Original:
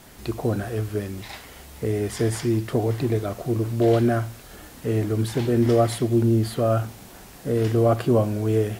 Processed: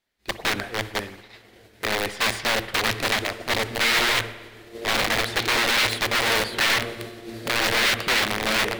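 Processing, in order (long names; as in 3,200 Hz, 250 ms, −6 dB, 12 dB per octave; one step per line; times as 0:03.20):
phase distortion by the signal itself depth 0.089 ms
feedback delay with all-pass diffusion 1,086 ms, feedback 61%, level −11 dB
wrap-around overflow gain 18.5 dB
downward expander −25 dBFS
octave-band graphic EQ 125/500/2,000/4,000 Hz −6/+3/+9/+9 dB
spring reverb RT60 1.3 s, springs 54 ms, chirp 60 ms, DRR 14 dB
level −3.5 dB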